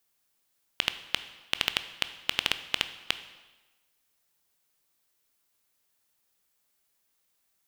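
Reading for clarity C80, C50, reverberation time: 14.5 dB, 12.5 dB, 1.2 s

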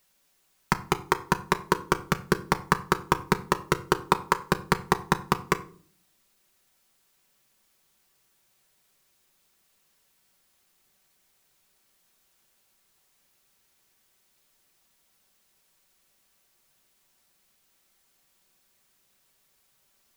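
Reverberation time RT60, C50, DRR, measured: 0.50 s, 17.5 dB, 6.0 dB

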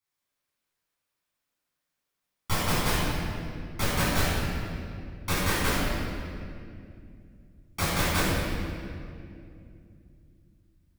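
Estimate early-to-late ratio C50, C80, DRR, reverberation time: -4.0 dB, -1.5 dB, -10.0 dB, 2.5 s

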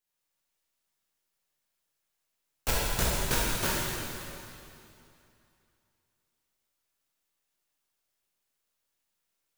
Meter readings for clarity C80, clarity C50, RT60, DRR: -1.5 dB, -3.5 dB, 2.7 s, -7.5 dB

